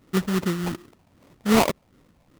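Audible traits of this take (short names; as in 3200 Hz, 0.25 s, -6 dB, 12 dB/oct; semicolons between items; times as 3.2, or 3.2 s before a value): phasing stages 12, 2.6 Hz, lowest notch 360–1600 Hz; aliases and images of a low sample rate 1600 Hz, jitter 20%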